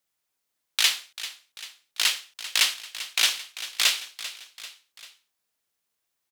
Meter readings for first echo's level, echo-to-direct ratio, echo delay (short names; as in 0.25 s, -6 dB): -14.0 dB, -12.5 dB, 0.392 s